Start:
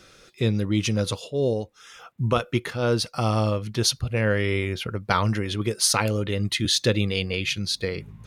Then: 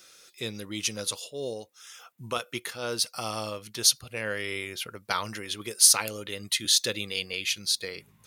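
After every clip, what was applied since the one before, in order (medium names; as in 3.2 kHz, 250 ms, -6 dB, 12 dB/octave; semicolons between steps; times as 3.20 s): RIAA curve recording; trim -7 dB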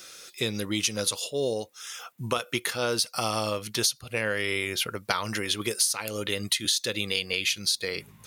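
compression 20:1, threshold -30 dBFS, peak gain reduction 18.5 dB; trim +8 dB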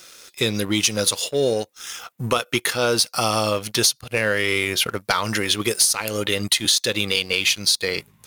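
waveshaping leveller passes 2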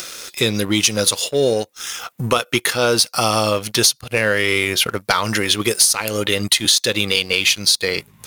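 upward compressor, threshold -25 dBFS; trim +3.5 dB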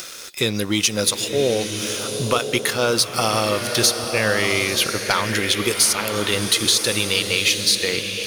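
swelling reverb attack 1070 ms, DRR 5.5 dB; trim -3 dB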